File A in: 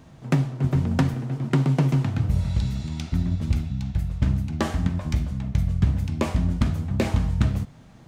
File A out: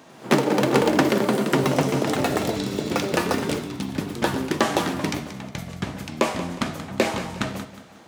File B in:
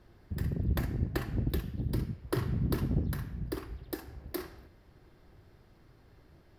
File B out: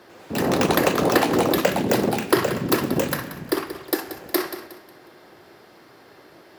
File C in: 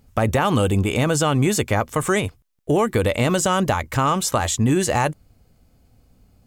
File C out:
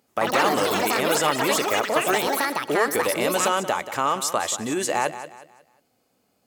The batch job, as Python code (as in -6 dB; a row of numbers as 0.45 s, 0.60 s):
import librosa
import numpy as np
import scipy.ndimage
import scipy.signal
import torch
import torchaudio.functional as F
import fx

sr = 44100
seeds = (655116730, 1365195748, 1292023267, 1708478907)

p1 = x + fx.echo_feedback(x, sr, ms=181, feedback_pct=35, wet_db=-12.5, dry=0)
p2 = fx.echo_pitch(p1, sr, ms=96, semitones=7, count=3, db_per_echo=-3.0)
p3 = scipy.signal.sosfilt(scipy.signal.butter(2, 360.0, 'highpass', fs=sr, output='sos'), p2)
y = p3 * 10.0 ** (-24 / 20.0) / np.sqrt(np.mean(np.square(p3)))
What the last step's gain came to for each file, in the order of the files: +7.0 dB, +17.0 dB, -2.5 dB